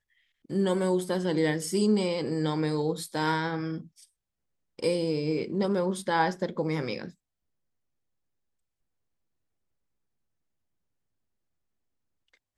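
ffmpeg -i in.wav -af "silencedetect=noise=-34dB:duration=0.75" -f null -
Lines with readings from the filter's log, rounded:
silence_start: 3.80
silence_end: 4.79 | silence_duration: 0.99
silence_start: 7.08
silence_end: 12.57 | silence_duration: 5.49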